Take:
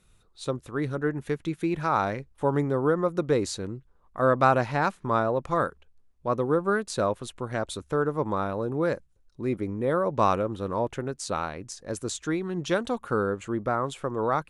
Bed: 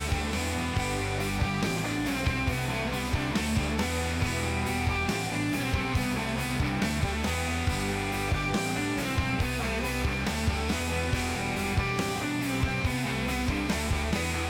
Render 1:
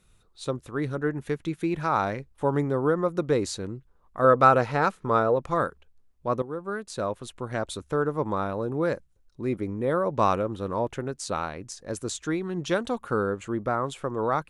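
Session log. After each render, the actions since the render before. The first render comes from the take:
0:04.24–0:05.36: hollow resonant body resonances 470/1,300 Hz, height 9 dB
0:06.42–0:07.55: fade in, from −12.5 dB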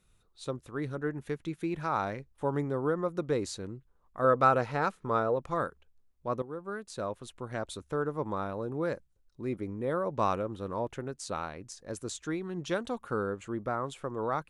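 level −6 dB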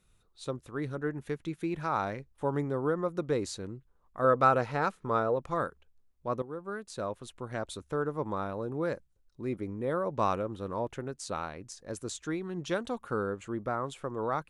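no processing that can be heard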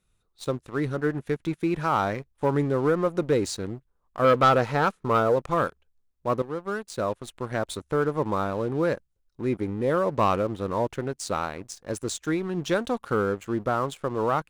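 leveller curve on the samples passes 2

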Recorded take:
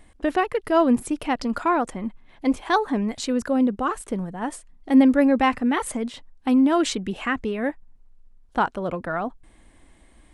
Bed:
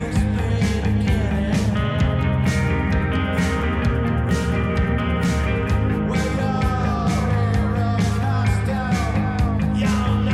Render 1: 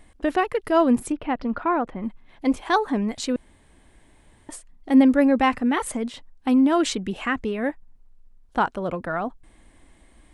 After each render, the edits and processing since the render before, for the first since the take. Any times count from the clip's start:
0:01.12–0:02.03: high-frequency loss of the air 360 metres
0:03.36–0:04.49: fill with room tone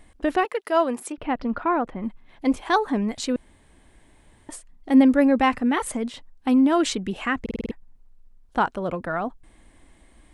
0:00.45–0:01.18: high-pass filter 450 Hz
0:07.41: stutter in place 0.05 s, 6 plays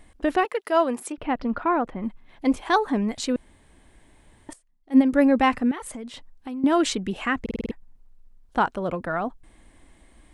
0:04.53–0:05.13: expander for the loud parts 2.5 to 1, over −22 dBFS
0:05.71–0:06.64: downward compressor 3 to 1, threshold −35 dBFS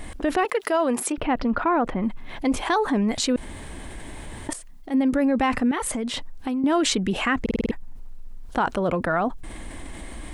brickwall limiter −15 dBFS, peak gain reduction 7.5 dB
envelope flattener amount 50%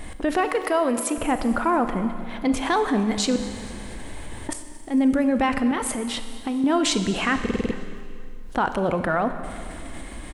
repeating echo 227 ms, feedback 55%, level −21 dB
four-comb reverb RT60 2.1 s, combs from 30 ms, DRR 9 dB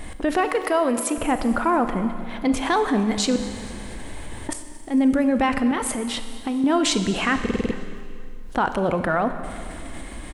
level +1 dB

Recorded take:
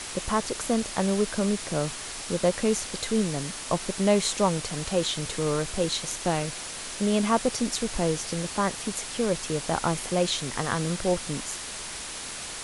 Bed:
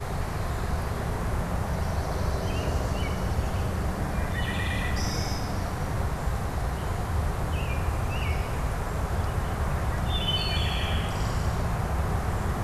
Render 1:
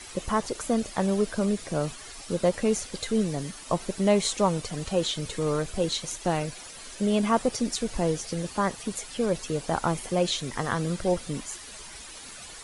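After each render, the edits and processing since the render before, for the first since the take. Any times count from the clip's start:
broadband denoise 11 dB, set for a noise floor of −37 dBFS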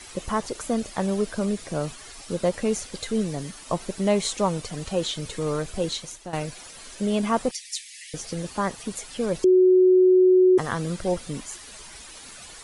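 0:05.89–0:06.33: fade out, to −14 dB
0:07.51–0:08.14: Butterworth high-pass 1,800 Hz 96 dB per octave
0:09.44–0:10.58: beep over 369 Hz −12.5 dBFS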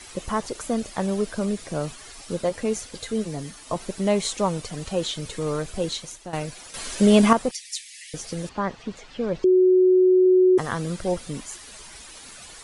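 0:02.42–0:03.76: notch comb filter 190 Hz
0:06.74–0:07.33: clip gain +9 dB
0:08.49–0:10.26: high-frequency loss of the air 170 metres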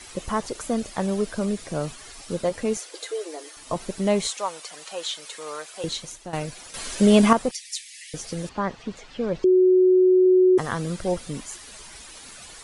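0:02.77–0:03.57: linear-phase brick-wall high-pass 300 Hz
0:04.27–0:05.84: high-pass filter 770 Hz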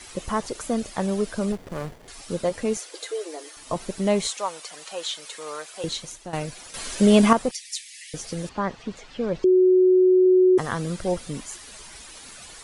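0:01.52–0:02.08: windowed peak hold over 33 samples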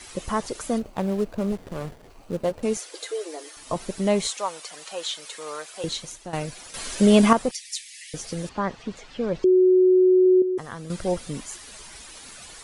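0:00.78–0:02.63: running median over 25 samples
0:10.42–0:10.90: clip gain −9 dB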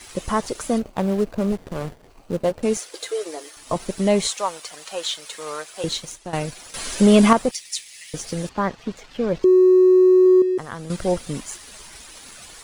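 leveller curve on the samples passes 1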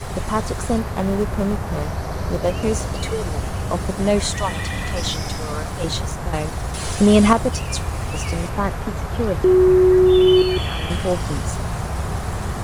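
mix in bed +2.5 dB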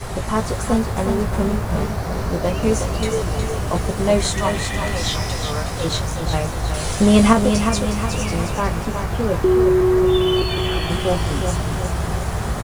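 double-tracking delay 18 ms −6.5 dB
feedback echo at a low word length 364 ms, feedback 55%, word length 7 bits, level −6.5 dB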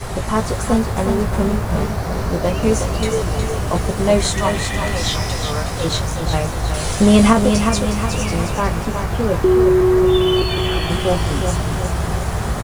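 level +2 dB
brickwall limiter −2 dBFS, peak gain reduction 2 dB

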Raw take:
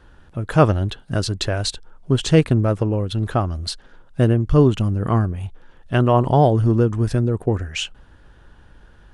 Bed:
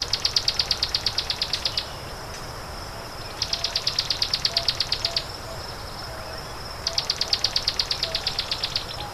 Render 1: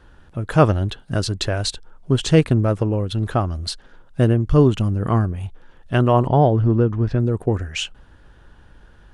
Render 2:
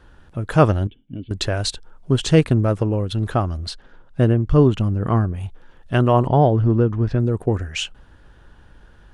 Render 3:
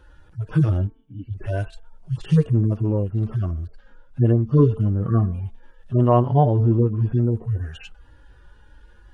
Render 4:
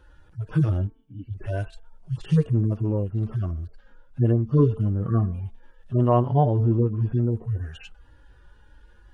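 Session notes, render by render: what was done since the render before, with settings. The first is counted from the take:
0:06.27–0:07.20: high-frequency loss of the air 220 metres
0:00.87–0:01.31: formant resonators in series i; 0:03.57–0:05.34: low-pass filter 3,900 Hz 6 dB per octave
harmonic-percussive split with one part muted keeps harmonic; hum removal 222.4 Hz, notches 11
level −3 dB

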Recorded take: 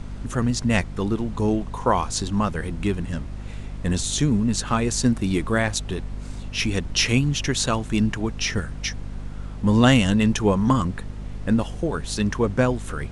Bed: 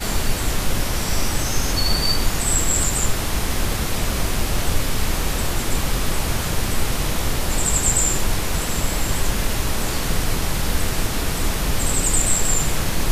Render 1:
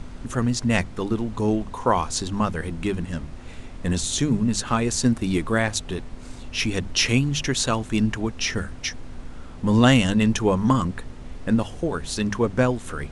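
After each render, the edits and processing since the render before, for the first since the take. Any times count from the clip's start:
mains-hum notches 50/100/150/200 Hz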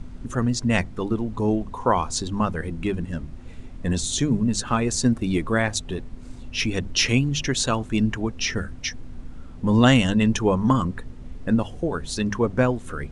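broadband denoise 8 dB, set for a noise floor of −38 dBFS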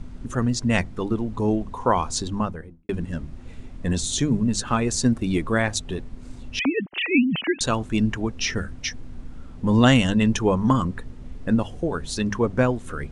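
0:02.24–0:02.89: fade out and dull
0:06.59–0:07.61: three sine waves on the formant tracks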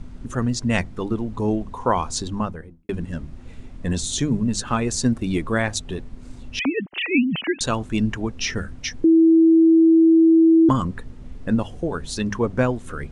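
0:09.04–0:10.69: beep over 326 Hz −10 dBFS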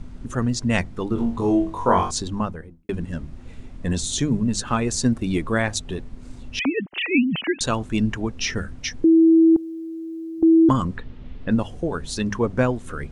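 0:01.14–0:02.11: flutter between parallel walls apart 3.7 metres, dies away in 0.35 s
0:09.56–0:10.43: every bin compressed towards the loudest bin 10 to 1
0:10.97–0:11.51: low-pass with resonance 3,400 Hz, resonance Q 1.7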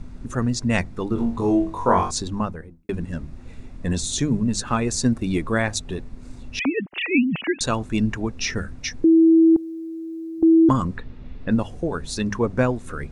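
notch filter 3,100 Hz, Q 10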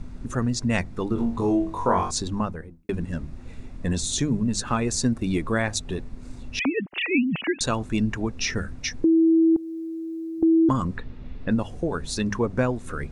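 downward compressor 1.5 to 1, threshold −23 dBFS, peak gain reduction 4 dB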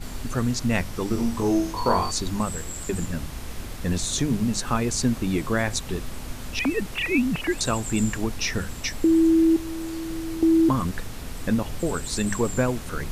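mix in bed −15.5 dB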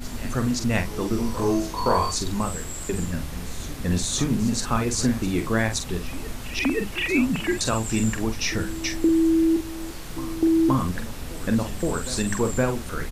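double-tracking delay 45 ms −7.5 dB
backwards echo 520 ms −15.5 dB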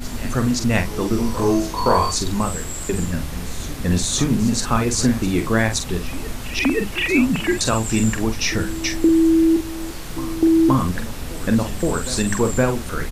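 level +4.5 dB

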